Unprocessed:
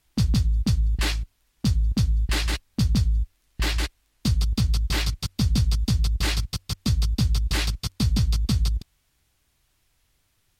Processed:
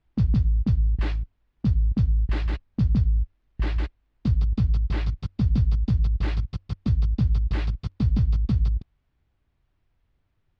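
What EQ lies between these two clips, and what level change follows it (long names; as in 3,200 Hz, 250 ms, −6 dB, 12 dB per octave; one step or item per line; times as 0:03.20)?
head-to-tape spacing loss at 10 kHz 37 dB
low-shelf EQ 430 Hz +3 dB
−2.0 dB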